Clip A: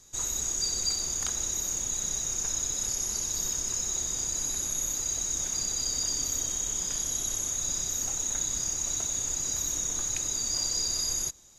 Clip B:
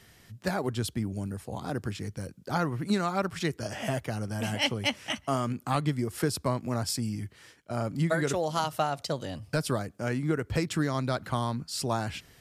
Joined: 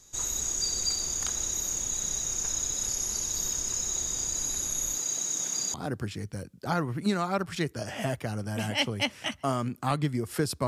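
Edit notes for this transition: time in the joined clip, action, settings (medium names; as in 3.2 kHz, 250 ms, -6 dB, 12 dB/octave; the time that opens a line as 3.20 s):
clip A
4.98–5.74 s: high-pass 140 Hz 24 dB/octave
5.74 s: go over to clip B from 1.58 s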